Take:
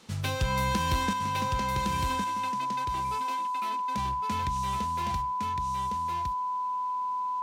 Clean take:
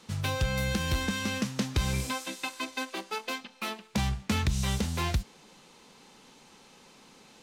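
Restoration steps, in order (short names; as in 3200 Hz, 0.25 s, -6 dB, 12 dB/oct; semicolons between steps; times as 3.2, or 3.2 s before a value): notch 1000 Hz, Q 30; inverse comb 1.11 s -4 dB; gain 0 dB, from 1.13 s +7.5 dB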